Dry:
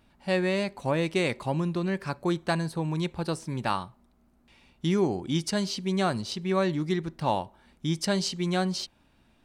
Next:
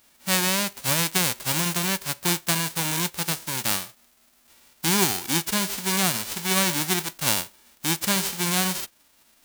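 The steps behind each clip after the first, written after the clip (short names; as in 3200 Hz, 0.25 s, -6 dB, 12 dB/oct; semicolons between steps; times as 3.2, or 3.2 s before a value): spectral whitening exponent 0.1; gain +3 dB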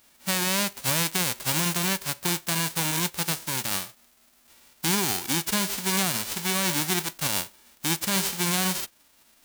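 limiter -11.5 dBFS, peak gain reduction 10 dB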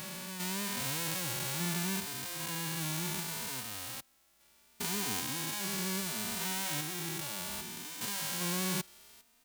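stepped spectrum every 0.4 s; endless flanger 3.1 ms +0.69 Hz; gain -3.5 dB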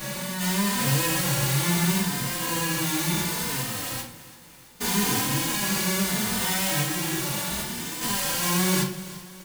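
feedback echo 0.334 s, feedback 57%, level -17.5 dB; reverb RT60 0.45 s, pre-delay 4 ms, DRR -10.5 dB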